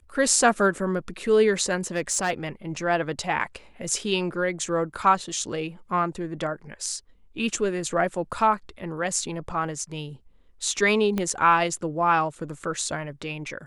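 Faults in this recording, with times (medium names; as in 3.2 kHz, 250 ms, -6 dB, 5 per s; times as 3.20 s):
1.86–2.31 s: clipped -18.5 dBFS
11.18 s: pop -13 dBFS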